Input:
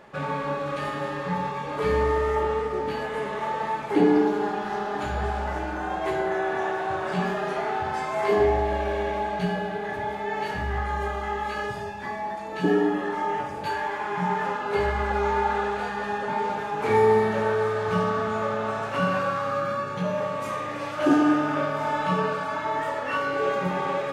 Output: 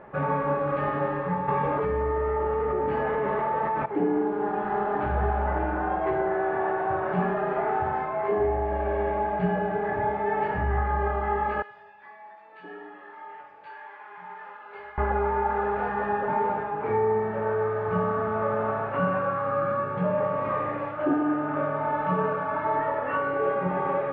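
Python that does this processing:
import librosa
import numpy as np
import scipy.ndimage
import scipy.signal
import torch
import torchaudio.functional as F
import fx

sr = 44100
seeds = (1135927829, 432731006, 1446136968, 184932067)

y = fx.env_flatten(x, sr, amount_pct=100, at=(1.48, 3.86))
y = fx.differentiator(y, sr, at=(11.62, 14.98))
y = scipy.signal.sosfilt(scipy.signal.bessel(4, 1400.0, 'lowpass', norm='mag', fs=sr, output='sos'), y)
y = fx.peak_eq(y, sr, hz=230.0, db=-3.0, octaves=0.83)
y = fx.rider(y, sr, range_db=5, speed_s=0.5)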